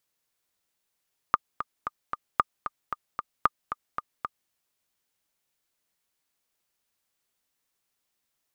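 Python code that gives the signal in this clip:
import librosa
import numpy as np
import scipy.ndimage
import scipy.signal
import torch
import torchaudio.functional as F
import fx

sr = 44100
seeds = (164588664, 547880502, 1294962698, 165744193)

y = fx.click_track(sr, bpm=227, beats=4, bars=3, hz=1210.0, accent_db=10.5, level_db=-6.0)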